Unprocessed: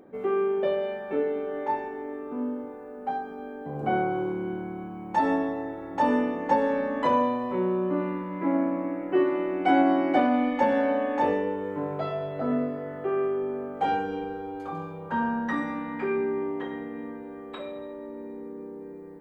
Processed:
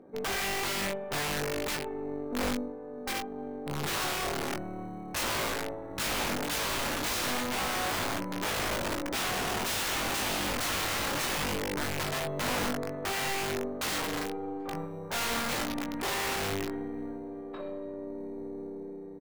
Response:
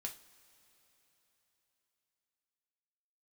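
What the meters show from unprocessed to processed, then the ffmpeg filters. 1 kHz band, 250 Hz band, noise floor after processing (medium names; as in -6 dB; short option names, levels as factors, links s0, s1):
-7.0 dB, -9.0 dB, -41 dBFS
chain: -filter_complex "[0:a]lowpass=f=1100:p=1,aeval=exprs='0.282*(cos(1*acos(clip(val(0)/0.282,-1,1)))-cos(1*PI/2))+0.0316*(cos(8*acos(clip(val(0)/0.282,-1,1)))-cos(8*PI/2))':c=same,acrossover=split=130[s0][s1];[s0]acrusher=samples=22:mix=1:aa=0.000001[s2];[s2][s1]amix=inputs=2:normalize=0,aeval=exprs='(mod(18.8*val(0)+1,2)-1)/18.8':c=same,asplit=2[s3][s4];[s4]adelay=20,volume=0.531[s5];[s3][s5]amix=inputs=2:normalize=0,volume=0.794"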